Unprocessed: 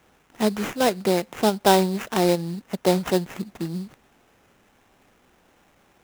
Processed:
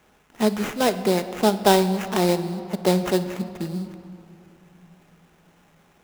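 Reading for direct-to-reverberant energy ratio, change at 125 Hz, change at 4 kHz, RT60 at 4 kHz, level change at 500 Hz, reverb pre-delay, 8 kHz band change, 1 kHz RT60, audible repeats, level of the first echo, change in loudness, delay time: 9.5 dB, +1.5 dB, +0.5 dB, 1.8 s, +0.5 dB, 5 ms, 0.0 dB, 3.1 s, none, none, +0.5 dB, none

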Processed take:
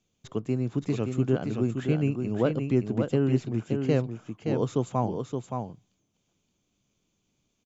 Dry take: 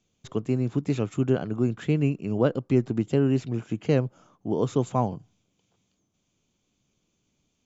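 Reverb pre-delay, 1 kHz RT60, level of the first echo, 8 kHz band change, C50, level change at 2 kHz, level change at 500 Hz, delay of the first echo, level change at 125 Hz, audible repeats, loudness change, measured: none, none, -5.5 dB, n/a, none, -1.5 dB, -1.5 dB, 0.571 s, -1.0 dB, 1, -2.0 dB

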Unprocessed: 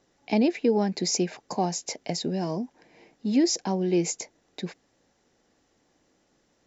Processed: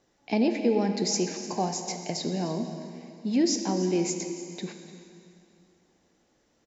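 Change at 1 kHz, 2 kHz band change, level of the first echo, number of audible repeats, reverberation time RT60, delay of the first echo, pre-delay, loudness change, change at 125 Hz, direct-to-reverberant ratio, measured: -1.0 dB, -1.0 dB, -16.5 dB, 1, 2.6 s, 0.299 s, 5 ms, -1.0 dB, -1.5 dB, 5.5 dB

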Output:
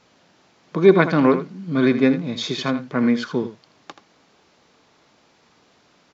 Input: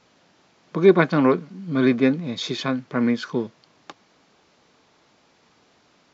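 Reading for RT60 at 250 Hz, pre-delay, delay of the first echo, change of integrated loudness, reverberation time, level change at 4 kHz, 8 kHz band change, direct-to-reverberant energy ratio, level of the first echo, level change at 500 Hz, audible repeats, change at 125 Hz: none, none, 80 ms, +2.0 dB, none, +2.0 dB, n/a, none, -11.5 dB, +1.5 dB, 1, +1.5 dB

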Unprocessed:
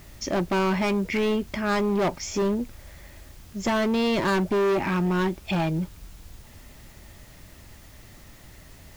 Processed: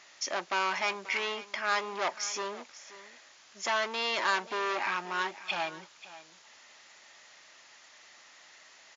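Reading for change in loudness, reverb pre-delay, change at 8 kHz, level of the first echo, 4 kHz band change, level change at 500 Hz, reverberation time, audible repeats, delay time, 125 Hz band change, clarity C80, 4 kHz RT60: -6.5 dB, none, -0.5 dB, -16.5 dB, 0.0 dB, -12.0 dB, none, 1, 0.535 s, under -25 dB, none, none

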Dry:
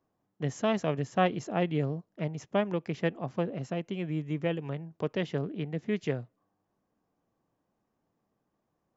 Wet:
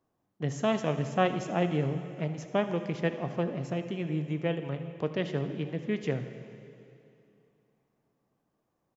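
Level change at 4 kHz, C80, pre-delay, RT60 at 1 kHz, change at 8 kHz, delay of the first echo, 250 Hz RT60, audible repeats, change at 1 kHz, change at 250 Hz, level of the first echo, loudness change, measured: +0.5 dB, 10.0 dB, 5 ms, 2.8 s, n/a, 79 ms, 2.9 s, 1, 0.0 dB, +0.5 dB, -17.5 dB, +0.5 dB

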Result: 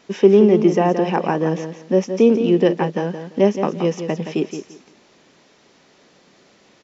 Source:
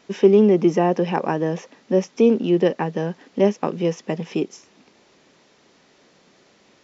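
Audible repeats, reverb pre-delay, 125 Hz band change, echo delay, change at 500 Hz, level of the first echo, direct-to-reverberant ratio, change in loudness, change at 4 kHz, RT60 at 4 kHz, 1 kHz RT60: 2, none, +2.5 dB, 0.171 s, +2.5 dB, -9.0 dB, none, +2.5 dB, +2.5 dB, none, none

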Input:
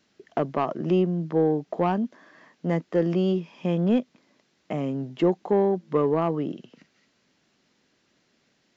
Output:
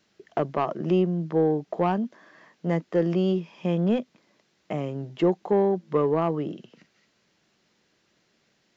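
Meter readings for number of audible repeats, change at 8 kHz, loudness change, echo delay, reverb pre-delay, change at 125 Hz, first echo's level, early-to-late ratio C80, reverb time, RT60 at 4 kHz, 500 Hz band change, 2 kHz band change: none, n/a, -0.5 dB, none, none, 0.0 dB, none, none, none, none, 0.0 dB, 0.0 dB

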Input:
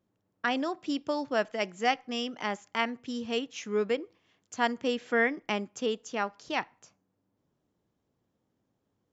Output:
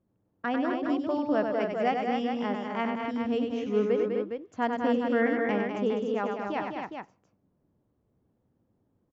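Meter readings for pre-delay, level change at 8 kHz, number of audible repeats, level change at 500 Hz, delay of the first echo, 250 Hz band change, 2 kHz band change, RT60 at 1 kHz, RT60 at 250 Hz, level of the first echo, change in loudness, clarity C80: none, n/a, 4, +4.0 dB, 96 ms, +6.0 dB, -3.0 dB, none, none, -5.5 dB, +2.5 dB, none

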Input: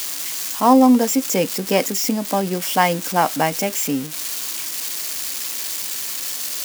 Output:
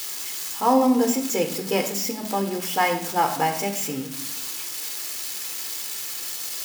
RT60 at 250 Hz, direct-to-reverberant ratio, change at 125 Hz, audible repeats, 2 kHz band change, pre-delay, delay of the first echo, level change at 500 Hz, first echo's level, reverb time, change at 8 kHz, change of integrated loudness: 1.0 s, 4.0 dB, -6.5 dB, none, -3.5 dB, 8 ms, none, -4.0 dB, none, 0.75 s, -5.0 dB, -5.0 dB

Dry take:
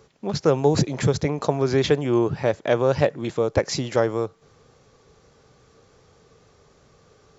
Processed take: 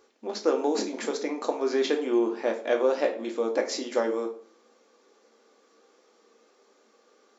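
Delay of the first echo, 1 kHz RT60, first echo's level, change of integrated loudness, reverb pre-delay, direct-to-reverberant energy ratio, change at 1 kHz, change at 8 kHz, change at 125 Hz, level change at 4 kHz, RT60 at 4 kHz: none, 0.45 s, none, -5.0 dB, 3 ms, 2.5 dB, -5.0 dB, n/a, under -30 dB, -5.0 dB, 0.40 s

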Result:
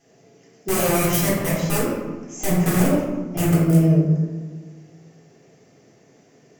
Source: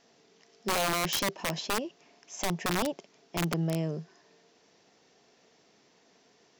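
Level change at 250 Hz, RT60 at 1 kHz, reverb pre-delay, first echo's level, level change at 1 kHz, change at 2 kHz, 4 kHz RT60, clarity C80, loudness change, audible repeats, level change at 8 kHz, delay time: +15.5 dB, 1.3 s, 3 ms, none, +4.5 dB, +5.0 dB, 0.65 s, 2.5 dB, +11.0 dB, none, +9.0 dB, none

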